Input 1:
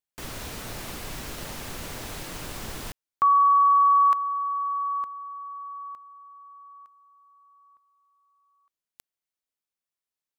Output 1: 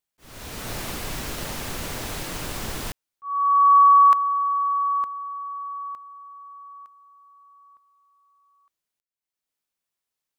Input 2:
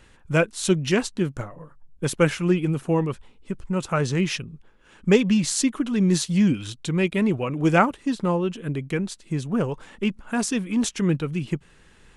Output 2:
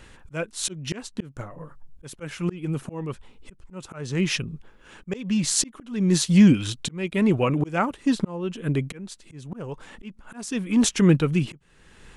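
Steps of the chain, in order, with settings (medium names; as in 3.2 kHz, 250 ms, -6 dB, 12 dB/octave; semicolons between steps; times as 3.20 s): slow attack 555 ms; trim +5 dB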